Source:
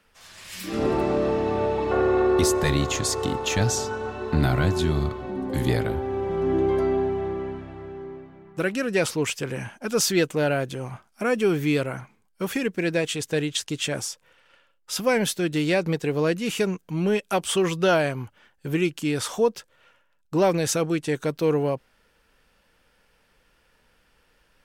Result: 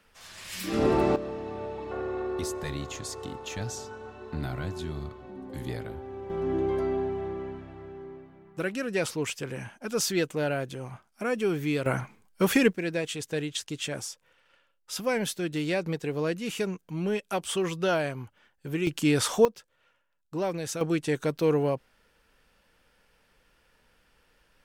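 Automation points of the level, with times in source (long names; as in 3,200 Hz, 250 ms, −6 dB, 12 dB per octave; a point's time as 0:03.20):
0 dB
from 0:01.16 −12 dB
from 0:06.30 −5.5 dB
from 0:11.86 +4.5 dB
from 0:12.73 −6 dB
from 0:18.87 +2 dB
from 0:19.45 −9.5 dB
from 0:20.81 −2 dB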